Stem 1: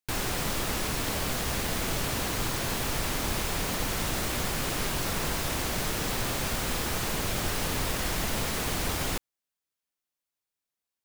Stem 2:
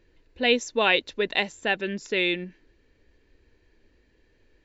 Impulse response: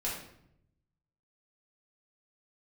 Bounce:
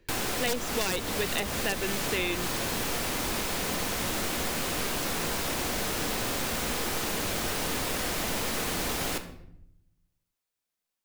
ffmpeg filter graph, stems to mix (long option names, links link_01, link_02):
-filter_complex "[0:a]volume=0dB,asplit=2[link_01][link_02];[link_02]volume=-9.5dB[link_03];[1:a]aeval=exprs='(mod(3.76*val(0)+1,2)-1)/3.76':channel_layout=same,volume=0.5dB[link_04];[2:a]atrim=start_sample=2205[link_05];[link_03][link_05]afir=irnorm=-1:irlink=0[link_06];[link_01][link_04][link_06]amix=inputs=3:normalize=0,acrossover=split=200|620|1500[link_07][link_08][link_09][link_10];[link_07]acompressor=threshold=-37dB:ratio=4[link_11];[link_08]acompressor=threshold=-33dB:ratio=4[link_12];[link_09]acompressor=threshold=-39dB:ratio=4[link_13];[link_10]acompressor=threshold=-30dB:ratio=4[link_14];[link_11][link_12][link_13][link_14]amix=inputs=4:normalize=0"